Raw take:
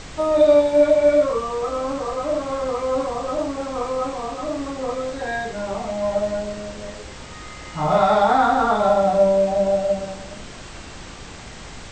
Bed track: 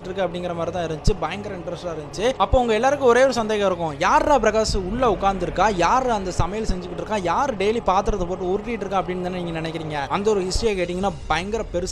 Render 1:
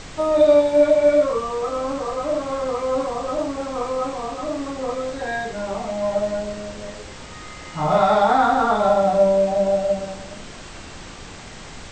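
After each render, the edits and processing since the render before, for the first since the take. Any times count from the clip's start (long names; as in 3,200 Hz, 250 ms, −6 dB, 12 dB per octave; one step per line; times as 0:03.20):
hum removal 60 Hz, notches 2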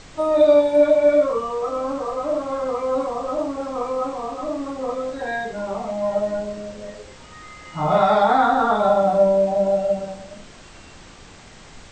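noise reduction from a noise print 6 dB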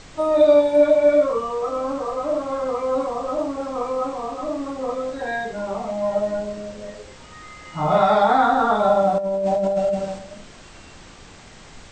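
0:09.18–0:10.19: compressor whose output falls as the input rises −21 dBFS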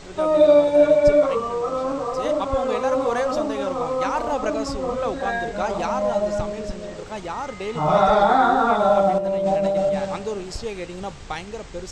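mix in bed track −9 dB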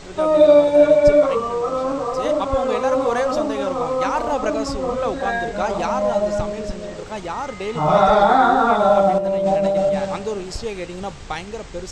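level +2.5 dB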